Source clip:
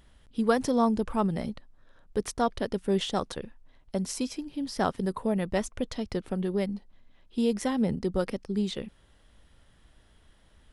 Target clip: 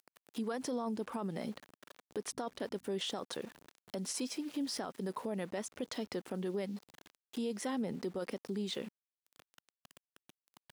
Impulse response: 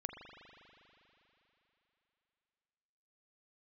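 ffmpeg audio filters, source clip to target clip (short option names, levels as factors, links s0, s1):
-filter_complex "[0:a]aeval=exprs='val(0)*gte(abs(val(0)),0.00355)':c=same,asettb=1/sr,asplit=3[s0][s1][s2];[s0]atrim=end=2.334[s3];[s1]atrim=start=2.33:end=3.02,asetpts=PTS-STARTPTS,afade=t=in:d=0.004:c=qsin,afade=t=out:st=0.686:d=0.004:c=qsin,aeval=exprs='val(0)+0.00251*(sin(2*PI*50*n/s)+sin(2*PI*2*50*n/s)/2+sin(2*PI*3*50*n/s)/3+sin(2*PI*4*50*n/s)/4+sin(2*PI*5*50*n/s)/5)':c=same[s4];[s2]atrim=start=3.016[s5];[s3][s4]acrossfade=d=0.004:c1=hsin:c2=qsin[s6];[s6][s5]acrossfade=d=0.004:c1=qsin:c2=hsin,acompressor=threshold=0.0126:ratio=3,highpass=240,alimiter=level_in=3.16:limit=0.0631:level=0:latency=1:release=11,volume=0.316,volume=1.78"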